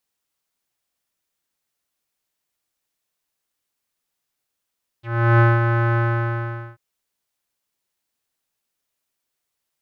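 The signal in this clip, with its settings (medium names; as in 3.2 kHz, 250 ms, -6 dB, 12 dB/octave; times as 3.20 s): synth note square A#2 12 dB/octave, low-pass 1.5 kHz, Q 3.6, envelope 1.5 oct, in 0.05 s, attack 363 ms, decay 0.20 s, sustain -6 dB, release 0.80 s, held 0.94 s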